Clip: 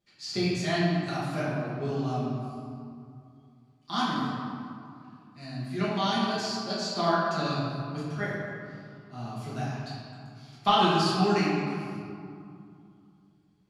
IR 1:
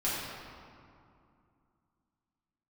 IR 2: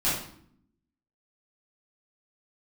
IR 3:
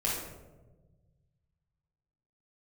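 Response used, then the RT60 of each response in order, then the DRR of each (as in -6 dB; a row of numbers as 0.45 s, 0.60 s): 1; 2.5 s, 0.65 s, 1.2 s; -9.5 dB, -11.0 dB, -5.5 dB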